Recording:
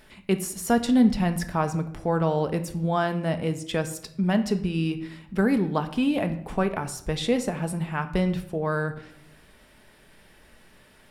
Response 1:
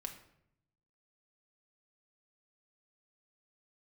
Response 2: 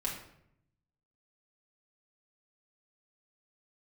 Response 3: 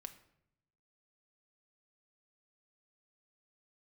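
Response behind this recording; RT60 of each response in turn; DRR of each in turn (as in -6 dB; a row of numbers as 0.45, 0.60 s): 3; 0.75, 0.75, 0.75 s; 3.5, -4.0, 7.5 dB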